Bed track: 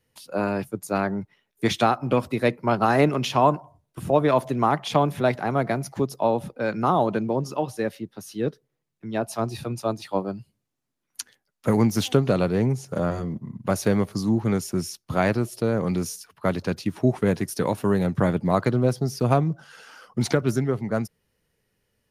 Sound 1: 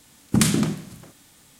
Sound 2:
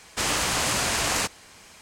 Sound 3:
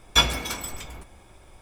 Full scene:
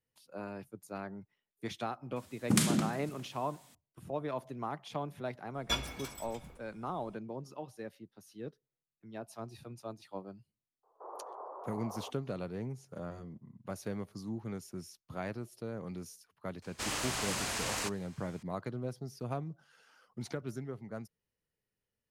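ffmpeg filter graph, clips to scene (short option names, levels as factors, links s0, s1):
-filter_complex "[2:a]asplit=2[s0][s1];[0:a]volume=0.133[s2];[1:a]highpass=120[s3];[s0]asuperpass=centerf=650:order=12:qfactor=0.84[s4];[s3]atrim=end=1.59,asetpts=PTS-STARTPTS,volume=0.398,afade=t=in:d=0.004:c=hsin,afade=t=out:st=1.586:d=0.004:c=hsin,adelay=2160[s5];[3:a]atrim=end=1.61,asetpts=PTS-STARTPTS,volume=0.188,afade=t=in:d=0.004:c=hsin,afade=t=out:st=1.606:d=0.004:c=hsin,adelay=5540[s6];[s4]atrim=end=1.81,asetpts=PTS-STARTPTS,volume=0.211,afade=t=in:d=0.004:c=hsin,afade=t=out:st=1.806:d=0.004:c=hsin,adelay=10830[s7];[s1]atrim=end=1.81,asetpts=PTS-STARTPTS,volume=0.282,afade=t=in:d=0.004:c=hsin,afade=t=out:st=1.806:d=0.004:c=hsin,adelay=16620[s8];[s2][s5][s6][s7][s8]amix=inputs=5:normalize=0"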